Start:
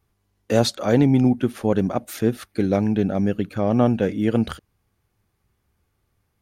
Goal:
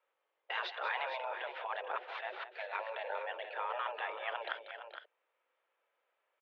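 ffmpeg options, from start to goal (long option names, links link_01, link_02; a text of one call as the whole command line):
ffmpeg -i in.wav -af "afftfilt=real='re*lt(hypot(re,im),0.224)':imag='im*lt(hypot(re,im),0.224)':win_size=1024:overlap=0.75,highpass=frequency=370:width_type=q:width=0.5412,highpass=frequency=370:width_type=q:width=1.307,lowpass=frequency=3200:width_type=q:width=0.5176,lowpass=frequency=3200:width_type=q:width=0.7071,lowpass=frequency=3200:width_type=q:width=1.932,afreqshift=130,aecho=1:1:188|433|462:0.266|0.141|0.335,volume=-4dB" out.wav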